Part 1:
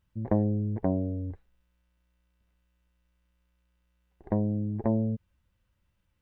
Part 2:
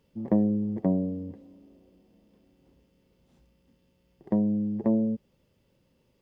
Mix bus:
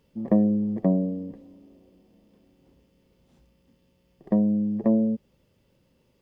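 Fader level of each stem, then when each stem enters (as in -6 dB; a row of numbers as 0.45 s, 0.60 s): -9.0 dB, +2.5 dB; 0.00 s, 0.00 s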